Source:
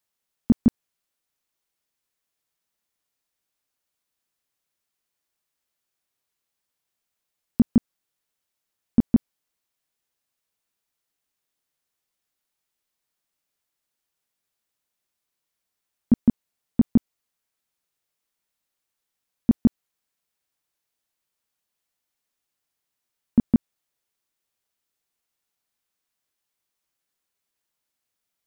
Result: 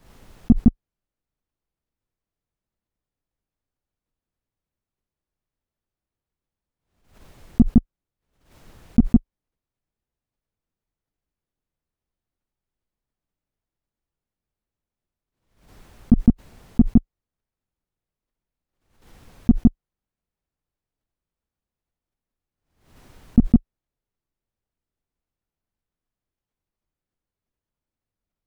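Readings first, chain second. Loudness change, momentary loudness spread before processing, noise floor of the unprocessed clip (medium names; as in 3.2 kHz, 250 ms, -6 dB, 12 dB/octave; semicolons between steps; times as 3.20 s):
+3.5 dB, 3 LU, -83 dBFS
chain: in parallel at -4.5 dB: overload inside the chain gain 16 dB; on the sum: tilt EQ -4.5 dB/octave; swell ahead of each attack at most 95 dB/s; trim -9 dB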